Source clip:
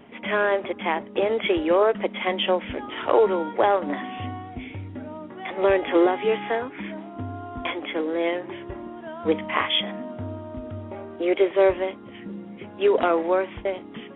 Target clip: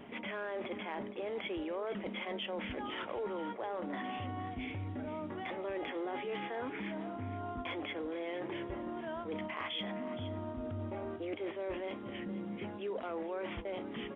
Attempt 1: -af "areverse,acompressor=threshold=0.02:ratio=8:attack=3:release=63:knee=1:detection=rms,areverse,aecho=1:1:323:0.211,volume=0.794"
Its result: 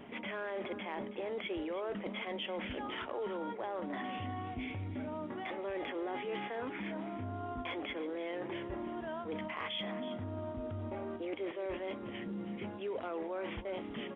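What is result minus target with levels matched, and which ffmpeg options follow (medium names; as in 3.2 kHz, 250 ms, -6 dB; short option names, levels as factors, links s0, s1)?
echo 144 ms early
-af "areverse,acompressor=threshold=0.02:ratio=8:attack=3:release=63:knee=1:detection=rms,areverse,aecho=1:1:467:0.211,volume=0.794"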